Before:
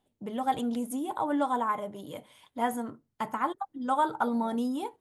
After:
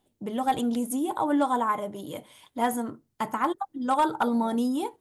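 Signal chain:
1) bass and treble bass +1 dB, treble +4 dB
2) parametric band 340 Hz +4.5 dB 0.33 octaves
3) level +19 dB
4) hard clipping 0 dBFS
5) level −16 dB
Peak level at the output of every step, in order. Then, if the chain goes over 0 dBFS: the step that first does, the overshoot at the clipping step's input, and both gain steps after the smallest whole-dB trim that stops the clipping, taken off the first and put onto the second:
−14.5, −14.5, +4.5, 0.0, −16.0 dBFS
step 3, 4.5 dB
step 3 +14 dB, step 5 −11 dB

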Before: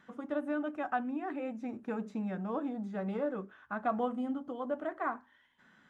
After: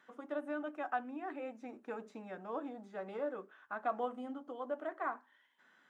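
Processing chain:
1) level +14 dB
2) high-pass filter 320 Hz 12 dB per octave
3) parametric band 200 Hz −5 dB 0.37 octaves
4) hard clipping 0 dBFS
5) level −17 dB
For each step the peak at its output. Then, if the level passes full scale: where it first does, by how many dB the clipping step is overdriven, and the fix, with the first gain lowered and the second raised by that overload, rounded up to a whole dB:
−6.0, −6.0, −6.0, −6.0, −23.0 dBFS
no step passes full scale

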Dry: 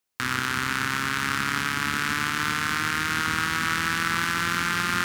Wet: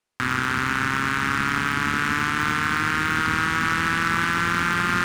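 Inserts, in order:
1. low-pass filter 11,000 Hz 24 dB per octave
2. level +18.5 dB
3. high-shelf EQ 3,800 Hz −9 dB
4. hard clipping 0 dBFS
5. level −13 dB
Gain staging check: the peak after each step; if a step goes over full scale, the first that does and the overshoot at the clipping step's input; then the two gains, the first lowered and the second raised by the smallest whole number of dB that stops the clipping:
−7.0, +11.5, +8.0, 0.0, −13.0 dBFS
step 2, 8.0 dB
step 2 +10.5 dB, step 5 −5 dB

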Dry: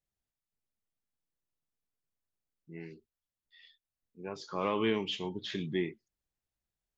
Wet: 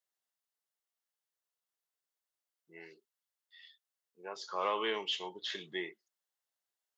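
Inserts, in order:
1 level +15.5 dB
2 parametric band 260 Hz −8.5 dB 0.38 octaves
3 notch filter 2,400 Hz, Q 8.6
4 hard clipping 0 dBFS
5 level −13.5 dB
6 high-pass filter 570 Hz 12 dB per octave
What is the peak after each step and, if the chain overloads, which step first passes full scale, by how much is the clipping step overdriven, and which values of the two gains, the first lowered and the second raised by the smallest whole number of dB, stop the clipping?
−2.5, −3.5, −3.5, −3.5, −17.0, −19.0 dBFS
no step passes full scale

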